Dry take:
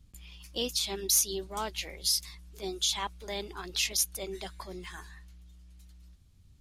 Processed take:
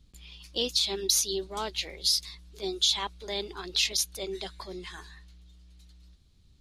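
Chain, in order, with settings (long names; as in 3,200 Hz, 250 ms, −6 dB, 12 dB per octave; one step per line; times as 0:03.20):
graphic EQ with 15 bands 100 Hz −5 dB, 400 Hz +4 dB, 4,000 Hz +8 dB, 16,000 Hz −11 dB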